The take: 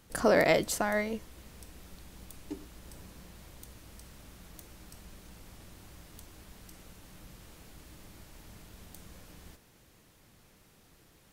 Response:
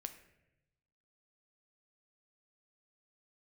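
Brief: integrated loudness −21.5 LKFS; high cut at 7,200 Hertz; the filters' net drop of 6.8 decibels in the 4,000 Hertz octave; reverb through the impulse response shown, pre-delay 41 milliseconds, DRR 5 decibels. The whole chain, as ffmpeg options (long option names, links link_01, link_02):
-filter_complex "[0:a]lowpass=7200,equalizer=frequency=4000:width_type=o:gain=-8.5,asplit=2[link_01][link_02];[1:a]atrim=start_sample=2205,adelay=41[link_03];[link_02][link_03]afir=irnorm=-1:irlink=0,volume=-1.5dB[link_04];[link_01][link_04]amix=inputs=2:normalize=0,volume=7dB"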